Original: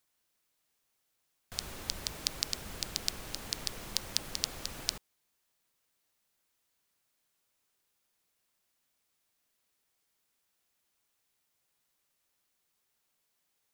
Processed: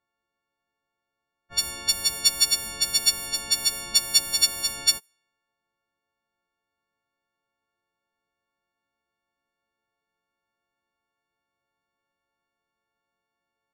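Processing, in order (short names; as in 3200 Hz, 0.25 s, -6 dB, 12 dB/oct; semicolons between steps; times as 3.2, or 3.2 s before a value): frequency quantiser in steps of 4 st; low-pass opened by the level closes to 1200 Hz, open at -25 dBFS; gain +3 dB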